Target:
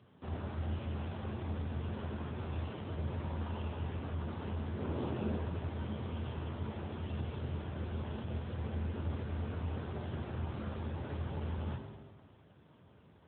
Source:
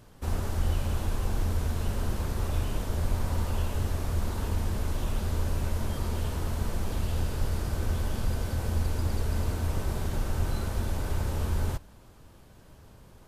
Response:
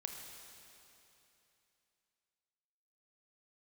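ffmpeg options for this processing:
-filter_complex "[0:a]highpass=68,asplit=3[a][b][c];[a]afade=t=out:st=4.8:d=0.02[d];[b]equalizer=f=380:t=o:w=2.4:g=8.5,afade=t=in:st=4.8:d=0.02,afade=t=out:st=5.35:d=0.02[e];[c]afade=t=in:st=5.35:d=0.02[f];[d][e][f]amix=inputs=3:normalize=0[g];[1:a]atrim=start_sample=2205,asetrate=83790,aresample=44100[h];[g][h]afir=irnorm=-1:irlink=0,volume=3dB" -ar 8000 -c:a libopencore_amrnb -b:a 7950

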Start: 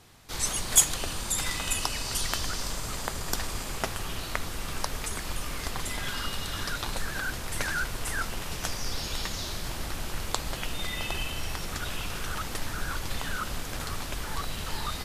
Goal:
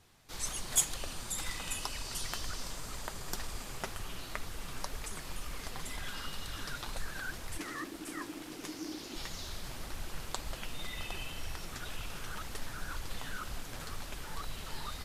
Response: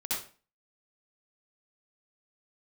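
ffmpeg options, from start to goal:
-filter_complex "[0:a]asplit=3[a][b][c];[a]afade=t=out:st=7.57:d=0.02[d];[b]aeval=exprs='val(0)*sin(2*PI*310*n/s)':c=same,afade=t=in:st=7.57:d=0.02,afade=t=out:st=9.15:d=0.02[e];[c]afade=t=in:st=9.15:d=0.02[f];[d][e][f]amix=inputs=3:normalize=0,flanger=delay=0.4:depth=8.2:regen=52:speed=2:shape=triangular,volume=-4.5dB"

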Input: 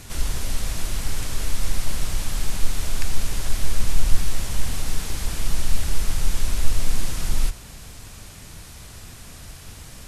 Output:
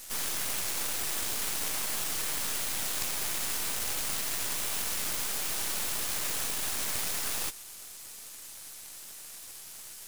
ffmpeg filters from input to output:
-af "aderivative,aeval=exprs='0.106*(cos(1*acos(clip(val(0)/0.106,-1,1)))-cos(1*PI/2))+0.0422*(cos(6*acos(clip(val(0)/0.106,-1,1)))-cos(6*PI/2))':c=same"

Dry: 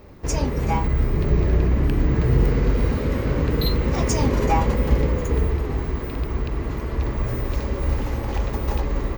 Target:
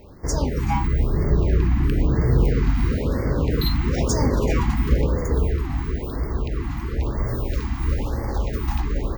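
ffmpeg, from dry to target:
-af "afftfilt=real='re*(1-between(b*sr/1024,460*pow(3200/460,0.5+0.5*sin(2*PI*1*pts/sr))/1.41,460*pow(3200/460,0.5+0.5*sin(2*PI*1*pts/sr))*1.41))':imag='im*(1-between(b*sr/1024,460*pow(3200/460,0.5+0.5*sin(2*PI*1*pts/sr))/1.41,460*pow(3200/460,0.5+0.5*sin(2*PI*1*pts/sr))*1.41))':win_size=1024:overlap=0.75"

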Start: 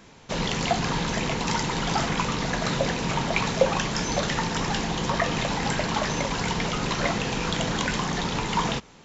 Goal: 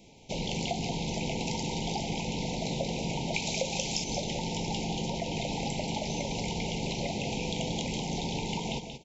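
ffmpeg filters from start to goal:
-filter_complex "[0:a]asettb=1/sr,asplit=3[a][b][c];[a]atrim=end=3.344[d];[b]atrim=start=3.34:end=4.04,asetpts=PTS-STARTPTS,afade=t=in:d=0.004:c=qsin,afade=t=out:st=0.696:d=0.004:c=qsin,highshelf=f=2.8k:g=12[e];[c]atrim=start=4.036[f];[d][e]acrossfade=d=0.004:c1=hsin:c2=qsin[g];[g][f]acrossfade=d=0.004:c1=qsin:c2=hsin,acompressor=threshold=-25dB:ratio=4,asuperstop=centerf=1400:order=12:qfactor=1.1,aecho=1:1:180:0.422,volume=-4dB"

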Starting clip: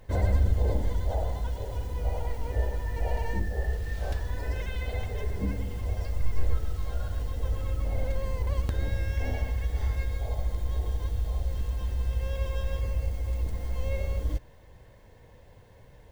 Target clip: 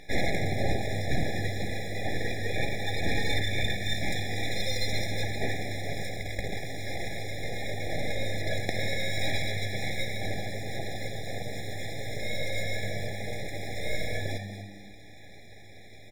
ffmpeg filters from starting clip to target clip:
-filter_complex "[0:a]acontrast=42,aeval=exprs='0.447*(cos(1*acos(clip(val(0)/0.447,-1,1)))-cos(1*PI/2))+0.0562*(cos(3*acos(clip(val(0)/0.447,-1,1)))-cos(3*PI/2))':c=same,aeval=exprs='0.501*sin(PI/2*2.51*val(0)/0.501)':c=same,bandpass=f=2k:t=q:w=0.56:csg=0,aeval=exprs='abs(val(0))':c=same,asplit=2[a][b];[b]asplit=3[c][d][e];[c]adelay=241,afreqshift=100,volume=-10dB[f];[d]adelay=482,afreqshift=200,volume=-20.2dB[g];[e]adelay=723,afreqshift=300,volume=-30.3dB[h];[f][g][h]amix=inputs=3:normalize=0[i];[a][i]amix=inputs=2:normalize=0,afftfilt=real='re*eq(mod(floor(b*sr/1024/830),2),0)':imag='im*eq(mod(floor(b*sr/1024/830),2),0)':win_size=1024:overlap=0.75,volume=4.5dB"

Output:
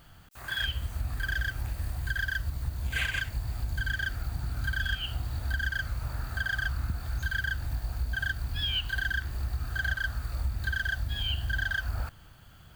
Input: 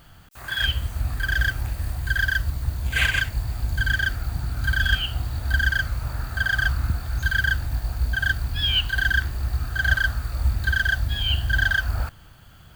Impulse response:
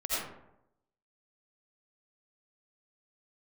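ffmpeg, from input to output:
-af "acompressor=threshold=-23dB:ratio=3,volume=-4.5dB"

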